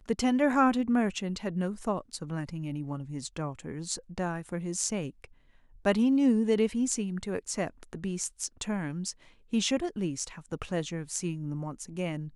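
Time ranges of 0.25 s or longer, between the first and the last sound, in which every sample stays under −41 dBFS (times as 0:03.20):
0:05.25–0:05.85
0:09.12–0:09.53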